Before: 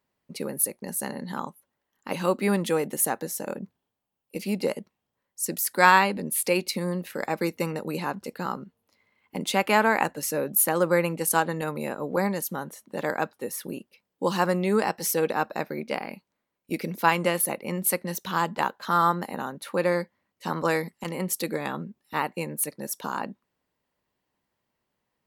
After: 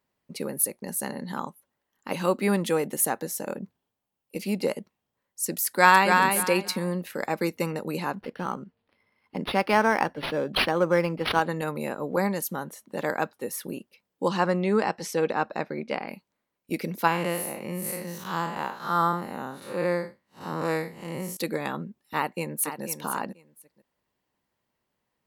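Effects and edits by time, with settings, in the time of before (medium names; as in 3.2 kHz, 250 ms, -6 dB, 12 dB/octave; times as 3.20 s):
5.66–6.16 s: echo throw 280 ms, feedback 25%, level -4 dB
8.20–11.42 s: decimation joined by straight lines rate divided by 6×
14.28–16.08 s: distance through air 77 m
17.07–21.37 s: spectral blur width 140 ms
22.16–22.83 s: echo throw 490 ms, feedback 15%, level -9 dB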